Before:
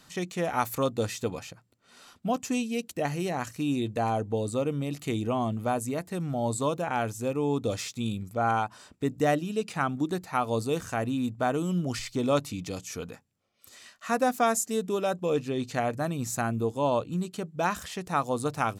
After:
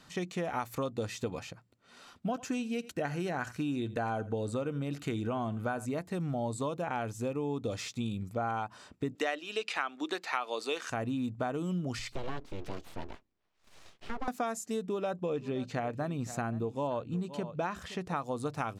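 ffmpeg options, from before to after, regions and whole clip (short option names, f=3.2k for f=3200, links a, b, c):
-filter_complex "[0:a]asettb=1/sr,asplit=3[a][b][c];[a]atrim=end=2.294[d];[b]atrim=start=2.29:end=5.86,asetpts=PTS-STARTPTS,afade=t=in:d=0.004:c=qsin,afade=t=out:st=3.566:d=0.004:c=qsin,equalizer=f=1.5k:w=5.5:g=11.5,aecho=1:1:85:0.0944,atrim=end_sample=157437[e];[c]atrim=start=5.856[f];[d][e]acrossfade=d=0.004:c1=hsin:c2=qsin[g];[g][f]acrossfade=d=0.004:c1=qsin:c2=hsin,asettb=1/sr,asplit=3[h][i][j];[h]atrim=end=9.154[k];[i]atrim=start=9.15:end=10.9,asetpts=PTS-STARTPTS,afade=t=in:d=0.004:c=qsin,afade=t=out:st=1.746:d=0.004:c=qsin,highpass=f=310:w=0.5412,highpass=f=310:w=1.3066,equalizer=f=2.8k:t=o:w=2.9:g=14[l];[j]atrim=start=10.896[m];[k][l]acrossfade=d=0.004:c1=hsin:c2=qsin[n];[n][m]acrossfade=d=0.004:c1=qsin:c2=hsin,asettb=1/sr,asplit=3[o][p][q];[o]atrim=end=12.124[r];[p]atrim=start=12.12:end=14.28,asetpts=PTS-STARTPTS,afade=t=in:d=0.004:c=qsin,afade=t=out:st=2.156:d=0.004:c=qsin,lowpass=5.1k,acrossover=split=290|830[s][t][u];[s]acompressor=threshold=-34dB:ratio=4[v];[t]acompressor=threshold=-35dB:ratio=4[w];[u]acompressor=threshold=-45dB:ratio=4[x];[v][w][x]amix=inputs=3:normalize=0,aeval=exprs='abs(val(0))':c=same[y];[q]atrim=start=14.276[z];[r][y]acrossfade=d=0.004:c1=hsin:c2=qsin[aa];[aa][z]acrossfade=d=0.004:c1=qsin:c2=hsin,asettb=1/sr,asplit=3[ab][ac][ad];[ab]atrim=end=14.864[ae];[ac]atrim=start=14.86:end=18.16,asetpts=PTS-STARTPTS,afade=t=in:d=0.004:c=qsin,afade=t=out:st=3.296:d=0.004:c=qsin,highshelf=f=5.1k:g=-6.5,aecho=1:1:519:0.126,atrim=end_sample=145530[af];[ad]atrim=start=18.156[ag];[ae][af]acrossfade=d=0.004:c1=hsin:c2=qsin[ah];[ah][ag]acrossfade=d=0.004:c1=qsin:c2=hsin,acompressor=threshold=-30dB:ratio=6,highshelf=f=7.5k:g=-11.5"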